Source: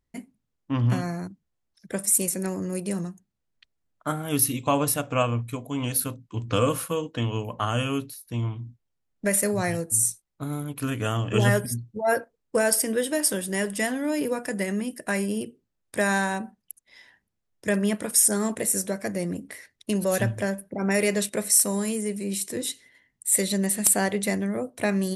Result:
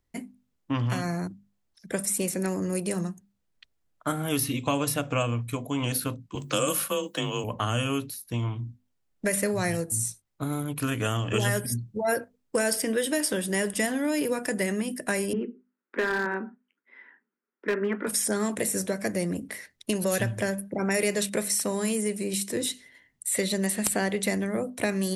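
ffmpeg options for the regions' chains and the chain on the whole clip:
-filter_complex "[0:a]asettb=1/sr,asplit=3[a][b][c];[a]atrim=end=6.354[d];[b]atrim=start=6.35:end=7.44,asetpts=PTS-STARTPTS,afade=t=in:d=0.004:c=qsin,afade=t=out:st=1.086:d=0.004:c=qsin,aemphasis=mode=production:type=bsi,afreqshift=24[e];[c]atrim=start=7.436[f];[d][e]acrossfade=d=0.004:c1=hsin:c2=qsin[g];[g][f]acrossfade=d=0.004:c1=qsin:c2=hsin,asettb=1/sr,asplit=3[h][i][j];[h]atrim=end=15.334[k];[i]atrim=start=15.33:end=18.07,asetpts=PTS-STARTPTS,afade=t=in:d=0.004:c=qsin,afade=t=out:st=2.736:d=0.004:c=qsin,flanger=delay=2.4:depth=9.6:regen=-65:speed=1.1:shape=triangular,highpass=f=230:w=0.5412,highpass=f=230:w=1.3066,equalizer=f=240:t=q:w=4:g=8,equalizer=f=400:t=q:w=4:g=8,equalizer=f=680:t=q:w=4:g=-9,equalizer=f=980:t=q:w=4:g=3,equalizer=f=1.4k:t=q:w=4:g=10,equalizer=f=2k:t=q:w=4:g=3,lowpass=f=2.3k:w=0.5412,lowpass=f=2.3k:w=1.3066,volume=19.5dB,asoftclip=hard,volume=-19.5dB[l];[j]atrim=start=18.066[m];[k][l]acrossfade=d=0.004:c1=hsin:c2=qsin[n];[n][m]acrossfade=d=0.004:c1=qsin:c2=hsin,bandreject=f=50:t=h:w=6,bandreject=f=100:t=h:w=6,bandreject=f=150:t=h:w=6,bandreject=f=200:t=h:w=6,bandreject=f=250:t=h:w=6,acrossover=split=540|1400|4800[o][p][q][r];[o]acompressor=threshold=-29dB:ratio=4[s];[p]acompressor=threshold=-38dB:ratio=4[t];[q]acompressor=threshold=-34dB:ratio=4[u];[r]acompressor=threshold=-33dB:ratio=4[v];[s][t][u][v]amix=inputs=4:normalize=0,volume=3dB"

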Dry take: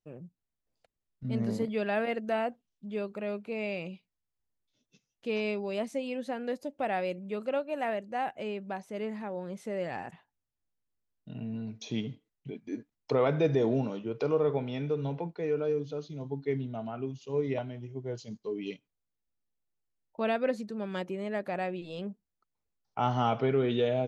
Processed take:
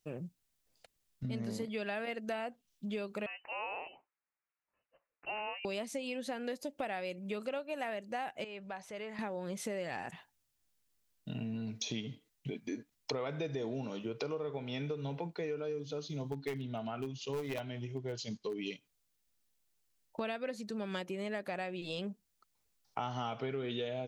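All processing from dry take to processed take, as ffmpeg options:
-filter_complex "[0:a]asettb=1/sr,asplit=3[a][b][c];[a]atrim=end=3.264[d];[b]atrim=start=3.26:end=5.65,asetpts=PTS-STARTPTS,afade=t=in:d=0.004:c=qsin,afade=t=out:st=2.386:d=0.004:c=qsin,highpass=1.3k,lowpass=f=2.7k:t=q:w=0.5098,lowpass=f=2.7k:t=q:w=0.6013,lowpass=f=2.7k:t=q:w=0.9,lowpass=f=2.7k:t=q:w=2.563,afreqshift=-3200[e];[c]atrim=start=5.646[f];[d][e]acrossfade=d=0.004:c1=hsin:c2=qsin[g];[g][f]acrossfade=d=0.004:c1=qsin:c2=hsin,asettb=1/sr,asplit=3[h][i][j];[h]atrim=end=8.444[k];[i]atrim=start=8.44:end=9.19,asetpts=PTS-STARTPTS,afade=t=in:d=0.004:c=qsin,afade=t=out:st=0.746:d=0.004:c=qsin,lowpass=f=2.7k:p=1,equalizer=f=270:w=1.4:g=-15,acompressor=threshold=-50dB:ratio=2:attack=3.2:release=140:knee=1:detection=peak[l];[j]atrim=start=9.186[m];[k][l]acrossfade=d=0.004:c1=hsin:c2=qsin[n];[n][m]acrossfade=d=0.004:c1=qsin:c2=hsin,asettb=1/sr,asplit=3[o][p][q];[o]atrim=end=16.324[r];[p]atrim=start=16.32:end=18.59,asetpts=PTS-STARTPTS,afade=t=in:d=0.004:c=qsin,afade=t=out:st=2.266:d=0.004:c=qsin,lowpass=3.3k,aeval=exprs='clip(val(0),-1,0.0447)':c=same,aemphasis=mode=production:type=75fm[s];[q]atrim=start=18.586[t];[r][s]acrossfade=d=0.004:c1=hsin:c2=qsin[u];[u][t]acrossfade=d=0.004:c1=qsin:c2=hsin,highshelf=f=2k:g=10,acompressor=threshold=-40dB:ratio=6,volume=4dB"

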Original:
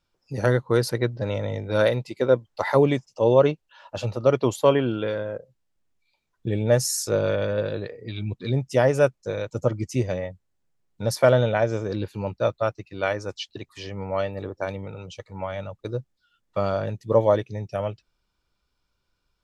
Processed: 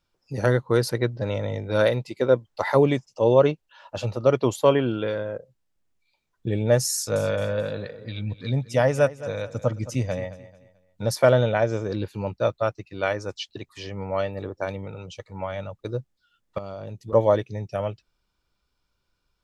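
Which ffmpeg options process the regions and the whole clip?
-filter_complex "[0:a]asettb=1/sr,asplit=3[a][b][c];[a]atrim=end=6.944[d];[b]atrim=start=6.94:end=11.02,asetpts=PTS-STARTPTS,afade=t=in:d=0.004:c=qsin,afade=t=out:st=4.076:d=0.004:c=qsin,equalizer=f=370:w=4.2:g=-11,aecho=1:1:218|436|654:0.158|0.0523|0.0173,atrim=end_sample=179928[e];[c]atrim=start=11.016[f];[d][e]acrossfade=d=0.004:c1=hsin:c2=qsin[g];[g][f]acrossfade=d=0.004:c1=qsin:c2=hsin,asettb=1/sr,asplit=3[h][i][j];[h]atrim=end=16.584[k];[i]atrim=start=16.58:end=17.13,asetpts=PTS-STARTPTS,afade=t=in:d=0.004:c=qsin,afade=t=out:st=0.546:d=0.004:c=qsin,equalizer=f=1.7k:t=o:w=0.49:g=-9,acompressor=threshold=-31dB:ratio=12:attack=3.2:release=140:knee=1:detection=peak[l];[j]atrim=start=17.126[m];[k][l]acrossfade=d=0.004:c1=hsin:c2=qsin[n];[n][m]acrossfade=d=0.004:c1=qsin:c2=hsin"

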